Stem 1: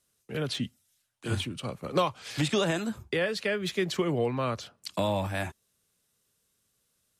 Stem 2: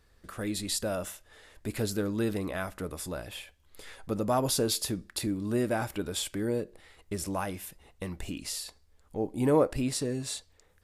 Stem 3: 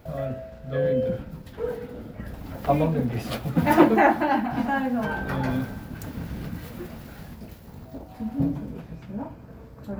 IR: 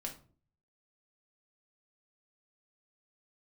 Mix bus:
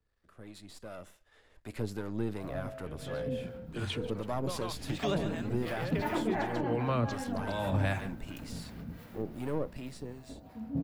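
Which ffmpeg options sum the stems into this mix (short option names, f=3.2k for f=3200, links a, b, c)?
-filter_complex "[0:a]dynaudnorm=f=240:g=13:m=12dB,adelay=2500,volume=-4.5dB,asplit=2[a][b];[b]volume=-15dB[c];[1:a]aeval=exprs='if(lt(val(0),0),0.447*val(0),val(0))':c=same,dynaudnorm=f=120:g=21:m=11dB,volume=-11dB,asplit=2[d][e];[2:a]highshelf=f=11k:g=11,adelay=2350,volume=-10.5dB,asplit=3[f][g][h];[g]volume=-8dB[i];[h]volume=-7.5dB[j];[e]apad=whole_len=427550[k];[a][k]sidechaincompress=threshold=-49dB:ratio=4:attack=20:release=139[l];[3:a]atrim=start_sample=2205[m];[i][m]afir=irnorm=-1:irlink=0[n];[c][j]amix=inputs=2:normalize=0,aecho=0:1:142:1[o];[l][d][f][n][o]amix=inputs=5:normalize=0,acrossover=split=150[p][q];[q]acompressor=threshold=-30dB:ratio=2[r];[p][r]amix=inputs=2:normalize=0,acrossover=split=650[s][t];[s]aeval=exprs='val(0)*(1-0.5/2+0.5/2*cos(2*PI*2.7*n/s))':c=same[u];[t]aeval=exprs='val(0)*(1-0.5/2-0.5/2*cos(2*PI*2.7*n/s))':c=same[v];[u][v]amix=inputs=2:normalize=0,highshelf=f=6.4k:g=-11.5"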